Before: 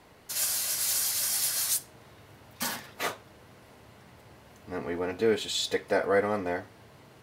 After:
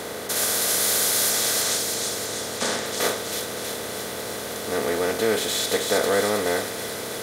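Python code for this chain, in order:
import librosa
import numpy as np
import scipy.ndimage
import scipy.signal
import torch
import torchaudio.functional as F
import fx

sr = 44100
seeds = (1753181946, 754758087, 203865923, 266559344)

y = fx.bin_compress(x, sr, power=0.4)
y = fx.lowpass(y, sr, hz=8500.0, slope=24, at=(1.3, 2.86))
y = fx.dmg_crackle(y, sr, seeds[0], per_s=150.0, level_db=-48.0, at=(5.5, 6.22), fade=0.02)
y = fx.echo_wet_highpass(y, sr, ms=320, feedback_pct=59, hz=2800.0, wet_db=-3.0)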